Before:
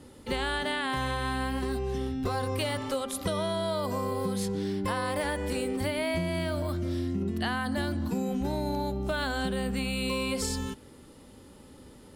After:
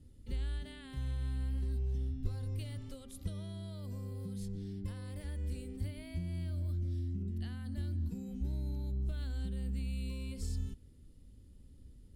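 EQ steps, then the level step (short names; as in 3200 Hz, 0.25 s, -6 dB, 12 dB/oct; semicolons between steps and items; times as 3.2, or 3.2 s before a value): passive tone stack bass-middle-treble 10-0-1; low shelf 87 Hz +9.5 dB; +3.5 dB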